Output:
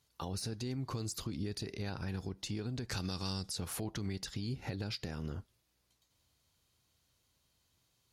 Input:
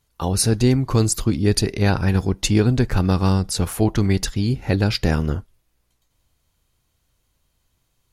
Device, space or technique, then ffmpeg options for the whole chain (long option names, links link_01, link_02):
broadcast voice chain: -filter_complex "[0:a]highpass=74,deesser=0.35,acompressor=threshold=-26dB:ratio=5,equalizer=frequency=4600:width_type=o:width=1.1:gain=6,alimiter=limit=-23dB:level=0:latency=1:release=99,asettb=1/sr,asplit=3[link_01][link_02][link_03];[link_01]atrim=end=2.894[link_04];[link_02]atrim=start=2.89:end=3.49,asetpts=PTS-STARTPTS,afade=type=in:duration=0.004:curve=qsin,afade=type=out:start_time=0.596:duration=0.004:curve=qsin,equalizer=frequency=6400:width_type=o:width=2.3:gain=13.5[link_05];[link_03]atrim=start=3.486[link_06];[link_04][link_05]acrossfade=duration=0.004:curve1=hsin:curve2=qsin[link_07];[link_07][link_06]acrossfade=duration=0.004:curve1=qsin:curve2=hsin,volume=-6.5dB"